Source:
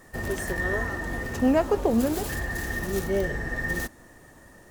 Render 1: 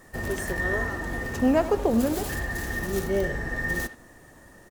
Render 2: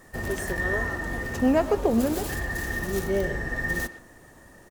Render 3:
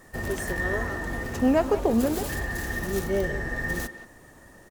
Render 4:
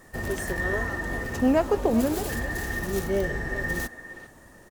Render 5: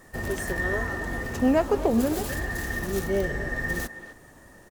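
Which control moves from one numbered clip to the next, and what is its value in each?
far-end echo of a speakerphone, delay time: 80, 120, 180, 400, 260 milliseconds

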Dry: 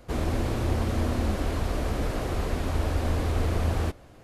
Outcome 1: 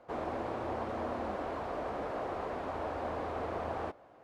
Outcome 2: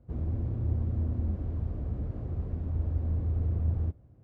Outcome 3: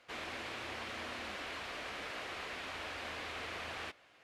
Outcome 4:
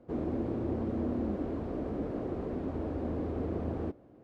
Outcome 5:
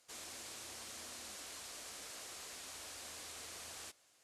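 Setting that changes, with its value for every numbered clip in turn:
resonant band-pass, frequency: 810, 100, 2,500, 300, 7,700 Hertz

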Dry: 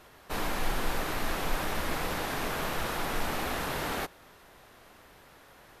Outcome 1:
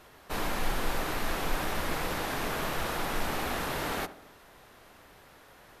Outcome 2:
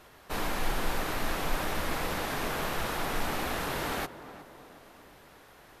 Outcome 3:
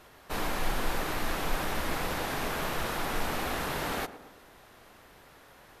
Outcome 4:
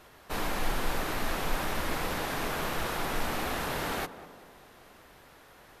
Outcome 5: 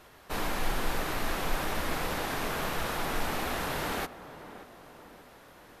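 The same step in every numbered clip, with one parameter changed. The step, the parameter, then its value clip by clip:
tape delay, delay time: 68, 364, 110, 196, 583 milliseconds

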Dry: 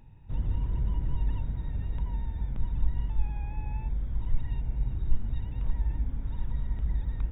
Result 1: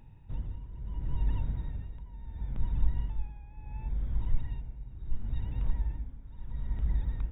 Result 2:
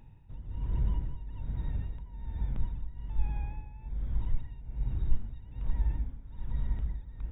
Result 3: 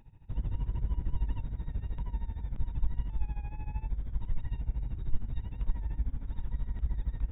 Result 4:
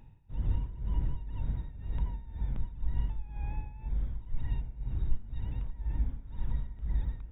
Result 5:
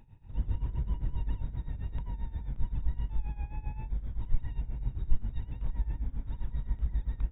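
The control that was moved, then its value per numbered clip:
amplitude tremolo, speed: 0.72, 1.2, 13, 2, 7.6 Hertz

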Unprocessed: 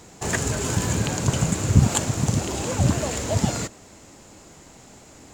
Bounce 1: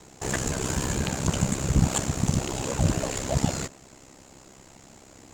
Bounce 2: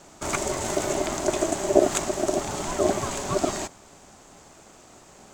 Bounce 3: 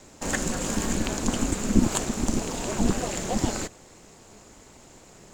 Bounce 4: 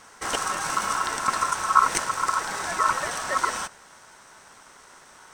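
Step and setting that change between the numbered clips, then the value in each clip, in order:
ring modulation, frequency: 33, 490, 110, 1,200 Hertz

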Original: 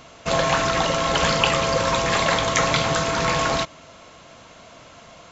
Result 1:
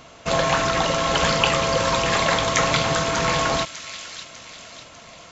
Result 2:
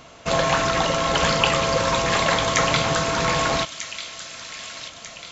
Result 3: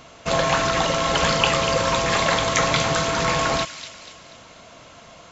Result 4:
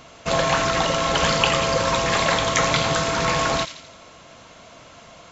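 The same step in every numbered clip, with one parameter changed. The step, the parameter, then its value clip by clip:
delay with a high-pass on its return, delay time: 598, 1,244, 242, 85 milliseconds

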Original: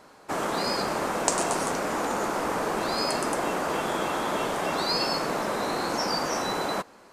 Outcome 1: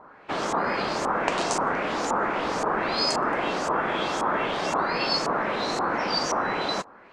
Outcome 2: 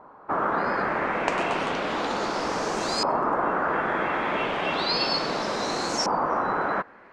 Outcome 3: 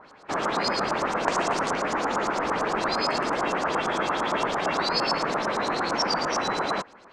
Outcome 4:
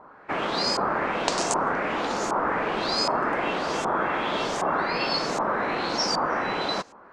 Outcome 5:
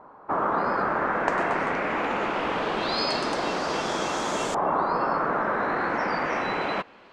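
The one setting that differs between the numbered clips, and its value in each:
auto-filter low-pass, speed: 1.9, 0.33, 8.8, 1.3, 0.22 Hertz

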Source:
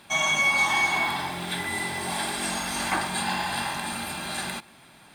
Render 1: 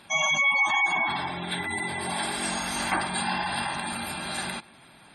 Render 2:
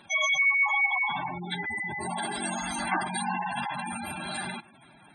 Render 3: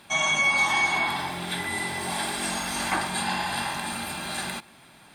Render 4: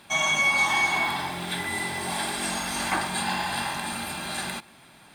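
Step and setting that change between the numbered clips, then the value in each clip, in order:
gate on every frequency bin, under each frame's peak: −20, −10, −40, −55 decibels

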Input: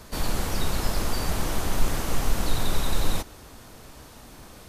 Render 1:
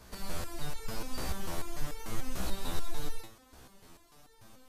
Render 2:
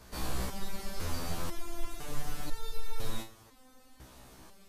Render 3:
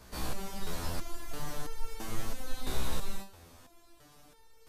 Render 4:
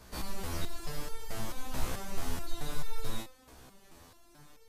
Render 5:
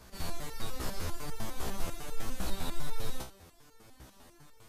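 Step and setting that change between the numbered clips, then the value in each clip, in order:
step-sequenced resonator, speed: 6.8, 2, 3, 4.6, 10 Hertz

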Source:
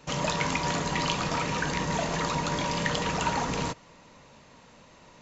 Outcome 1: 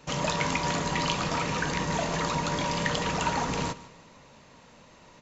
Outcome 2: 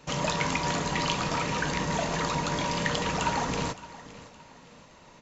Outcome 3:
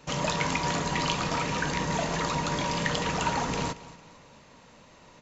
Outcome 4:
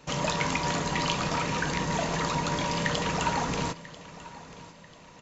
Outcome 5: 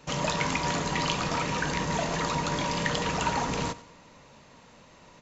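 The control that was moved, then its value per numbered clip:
repeating echo, delay time: 151, 567, 227, 991, 93 milliseconds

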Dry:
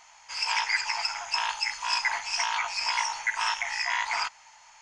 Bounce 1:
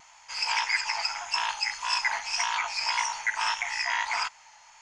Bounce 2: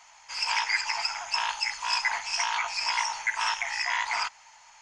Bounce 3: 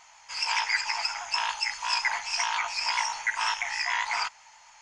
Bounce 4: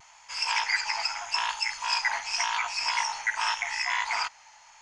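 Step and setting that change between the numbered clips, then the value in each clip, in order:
pitch vibrato, speed: 1.7, 15, 7.5, 0.84 Hertz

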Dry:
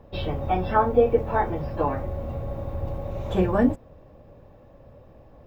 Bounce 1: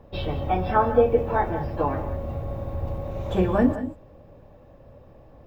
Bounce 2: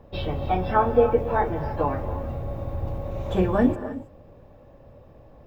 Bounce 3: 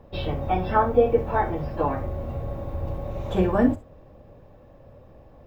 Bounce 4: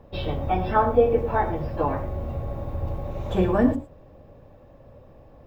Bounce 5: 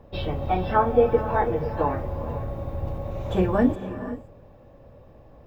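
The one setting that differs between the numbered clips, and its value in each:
reverb whose tail is shaped and stops, gate: 220, 340, 80, 130, 540 milliseconds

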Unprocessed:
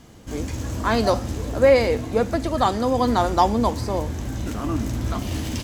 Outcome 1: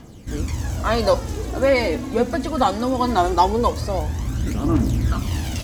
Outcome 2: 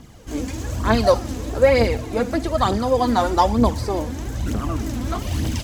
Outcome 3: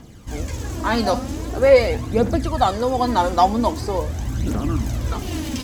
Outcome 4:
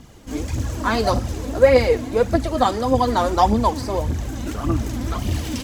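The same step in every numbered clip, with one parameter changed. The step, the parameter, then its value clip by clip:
phase shifter, speed: 0.21, 1.1, 0.44, 1.7 Hertz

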